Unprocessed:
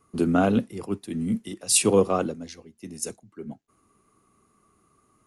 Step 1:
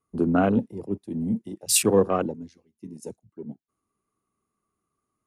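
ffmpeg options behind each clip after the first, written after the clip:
-af "afwtdn=0.02"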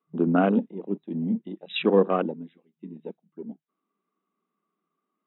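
-af "afftfilt=real='re*between(b*sr/4096,160,3900)':imag='im*between(b*sr/4096,160,3900)':win_size=4096:overlap=0.75"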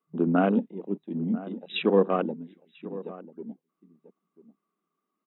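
-filter_complex "[0:a]asplit=2[a][b];[b]adelay=991.3,volume=-16dB,highshelf=f=4k:g=-22.3[c];[a][c]amix=inputs=2:normalize=0,volume=-1.5dB"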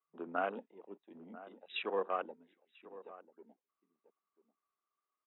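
-af "highpass=740,lowpass=3k,volume=-5.5dB"

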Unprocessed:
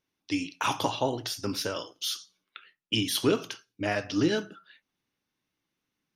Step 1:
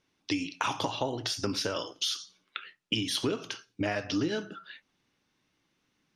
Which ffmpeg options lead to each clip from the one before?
-af "lowpass=7.7k,acompressor=threshold=-37dB:ratio=5,volume=8.5dB"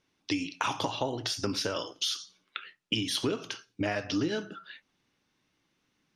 -af anull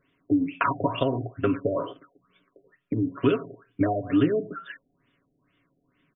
-af "asuperstop=centerf=850:order=12:qfactor=5.9,aecho=1:1:7.2:0.52,afftfilt=real='re*lt(b*sr/1024,770*pow(3700/770,0.5+0.5*sin(2*PI*2.2*pts/sr)))':imag='im*lt(b*sr/1024,770*pow(3700/770,0.5+0.5*sin(2*PI*2.2*pts/sr)))':win_size=1024:overlap=0.75,volume=6.5dB"

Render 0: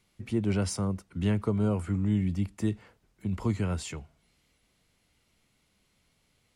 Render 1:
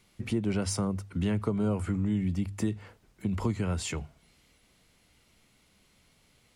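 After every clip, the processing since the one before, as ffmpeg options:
-af "bandreject=f=50:t=h:w=6,bandreject=f=100:t=h:w=6,bandreject=f=150:t=h:w=6,acompressor=threshold=-34dB:ratio=2.5,volume=6dB"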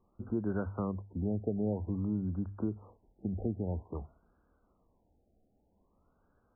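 -af "equalizer=f=140:t=o:w=0.6:g=-9.5,afftfilt=real='re*lt(b*sr/1024,800*pow(1700/800,0.5+0.5*sin(2*PI*0.51*pts/sr)))':imag='im*lt(b*sr/1024,800*pow(1700/800,0.5+0.5*sin(2*PI*0.51*pts/sr)))':win_size=1024:overlap=0.75,volume=-2.5dB"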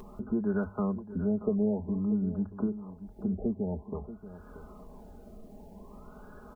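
-af "acompressor=mode=upward:threshold=-35dB:ratio=2.5,aecho=1:1:4.8:0.73,aecho=1:1:633:0.2,volume=1.5dB"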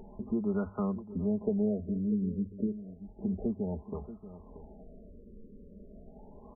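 -af "afftfilt=real='re*lt(b*sr/1024,570*pow(1500/570,0.5+0.5*sin(2*PI*0.32*pts/sr)))':imag='im*lt(b*sr/1024,570*pow(1500/570,0.5+0.5*sin(2*PI*0.32*pts/sr)))':win_size=1024:overlap=0.75,volume=-1.5dB"

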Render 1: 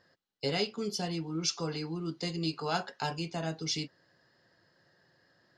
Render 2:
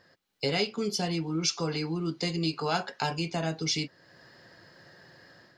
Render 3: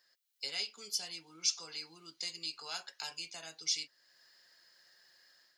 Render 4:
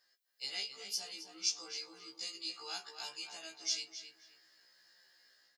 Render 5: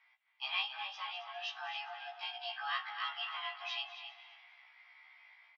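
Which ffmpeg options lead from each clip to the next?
-af "acompressor=threshold=-56dB:ratio=1.5,equalizer=f=2.3k:t=o:w=0.22:g=5,dynaudnorm=f=200:g=3:m=8dB,volume=5dB"
-af "aderivative"
-filter_complex "[0:a]asplit=2[a][b];[b]adelay=18,volume=-13dB[c];[a][c]amix=inputs=2:normalize=0,asplit=2[d][e];[e]adelay=266,lowpass=f=3k:p=1,volume=-7dB,asplit=2[f][g];[g]adelay=266,lowpass=f=3k:p=1,volume=0.31,asplit=2[h][i];[i]adelay=266,lowpass=f=3k:p=1,volume=0.31,asplit=2[j][k];[k]adelay=266,lowpass=f=3k:p=1,volume=0.31[l];[d][f][h][j][l]amix=inputs=5:normalize=0,afftfilt=real='re*1.73*eq(mod(b,3),0)':imag='im*1.73*eq(mod(b,3),0)':win_size=2048:overlap=0.75"
-filter_complex "[0:a]asplit=5[a][b][c][d][e];[b]adelay=203,afreqshift=51,volume=-15.5dB[f];[c]adelay=406,afreqshift=102,volume=-22.1dB[g];[d]adelay=609,afreqshift=153,volume=-28.6dB[h];[e]adelay=812,afreqshift=204,volume=-35.2dB[i];[a][f][g][h][i]amix=inputs=5:normalize=0,highpass=f=270:t=q:w=0.5412,highpass=f=270:t=q:w=1.307,lowpass=f=2.8k:t=q:w=0.5176,lowpass=f=2.8k:t=q:w=0.7071,lowpass=f=2.8k:t=q:w=1.932,afreqshift=380,volume=11dB"

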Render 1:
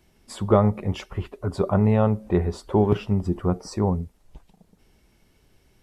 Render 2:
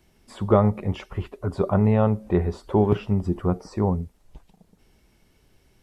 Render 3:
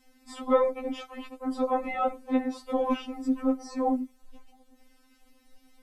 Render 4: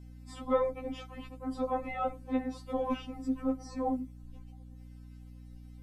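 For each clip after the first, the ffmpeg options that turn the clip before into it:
-filter_complex "[0:a]acrossover=split=3100[a][b];[b]acompressor=threshold=-49dB:ratio=4:attack=1:release=60[c];[a][c]amix=inputs=2:normalize=0"
-af "afftfilt=real='re*3.46*eq(mod(b,12),0)':imag='im*3.46*eq(mod(b,12),0)':win_size=2048:overlap=0.75,volume=3dB"
-af "aeval=exprs='val(0)+0.00794*(sin(2*PI*60*n/s)+sin(2*PI*2*60*n/s)/2+sin(2*PI*3*60*n/s)/3+sin(2*PI*4*60*n/s)/4+sin(2*PI*5*60*n/s)/5)':c=same,volume=-5.5dB"

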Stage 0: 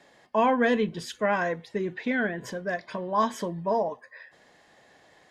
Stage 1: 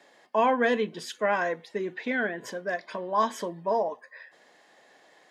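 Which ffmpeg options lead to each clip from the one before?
-af "highpass=270"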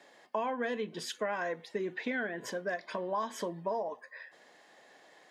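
-af "acompressor=threshold=-29dB:ratio=12,volume=-1dB"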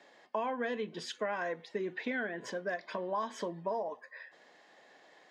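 -af "highpass=100,lowpass=6.3k,volume=-1dB"

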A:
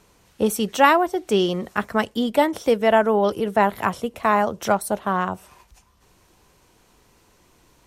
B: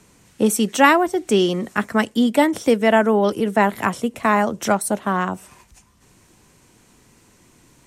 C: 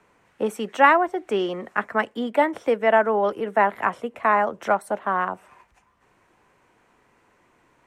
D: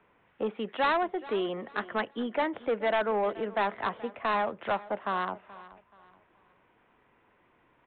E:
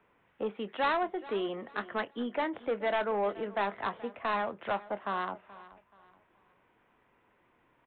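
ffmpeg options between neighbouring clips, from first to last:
-filter_complex "[0:a]equalizer=f=125:t=o:w=1:g=7,equalizer=f=250:t=o:w=1:g=8,equalizer=f=2k:t=o:w=1:g=5,equalizer=f=8k:t=o:w=1:g=9,acrossover=split=190[a][b];[a]acompressor=threshold=-35dB:ratio=6[c];[c][b]amix=inputs=2:normalize=0,volume=-1dB"
-filter_complex "[0:a]acrossover=split=440 2400:gain=0.2 1 0.1[a][b][c];[a][b][c]amix=inputs=3:normalize=0"
-af "aresample=8000,asoftclip=type=tanh:threshold=-17.5dB,aresample=44100,aecho=1:1:428|856|1284:0.119|0.038|0.0122,volume=-4.5dB"
-filter_complex "[0:a]asplit=2[a][b];[b]adelay=25,volume=-13.5dB[c];[a][c]amix=inputs=2:normalize=0,volume=-3dB"

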